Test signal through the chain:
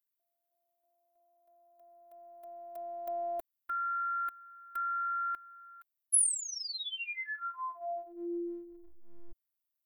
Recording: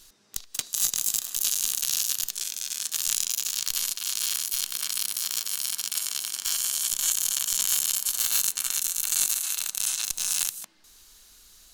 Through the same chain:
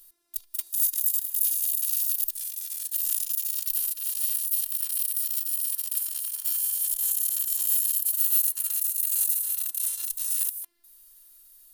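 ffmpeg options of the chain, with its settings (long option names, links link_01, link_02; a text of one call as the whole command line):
ffmpeg -i in.wav -af "aexciter=amount=7.8:drive=6.1:freq=9400,afftfilt=real='hypot(re,im)*cos(PI*b)':imag='0':win_size=512:overlap=0.75,volume=-9.5dB" out.wav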